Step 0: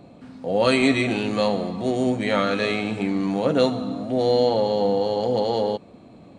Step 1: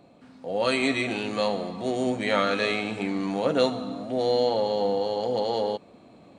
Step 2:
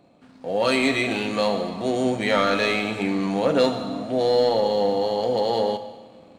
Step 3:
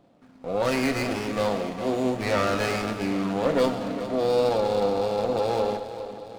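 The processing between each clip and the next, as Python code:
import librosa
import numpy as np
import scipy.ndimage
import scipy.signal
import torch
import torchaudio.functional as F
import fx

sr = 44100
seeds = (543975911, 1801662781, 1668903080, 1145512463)

y1 = fx.low_shelf(x, sr, hz=280.0, db=-8.0)
y1 = fx.rider(y1, sr, range_db=10, speed_s=2.0)
y1 = F.gain(torch.from_numpy(y1), -2.0).numpy()
y2 = fx.leveller(y1, sr, passes=1)
y2 = fx.rev_schroeder(y2, sr, rt60_s=1.4, comb_ms=27, drr_db=10.5)
y3 = fx.echo_feedback(y2, sr, ms=407, feedback_pct=57, wet_db=-12.5)
y3 = fx.running_max(y3, sr, window=9)
y3 = F.gain(torch.from_numpy(y3), -2.5).numpy()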